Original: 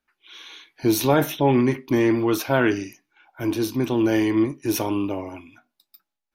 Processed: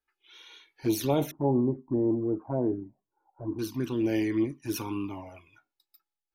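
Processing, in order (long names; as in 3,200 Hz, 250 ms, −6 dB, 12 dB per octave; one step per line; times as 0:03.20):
0:01.31–0:03.59: Butterworth low-pass 990 Hz 36 dB per octave
flanger swept by the level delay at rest 2.4 ms, full sweep at −14.5 dBFS
level −6 dB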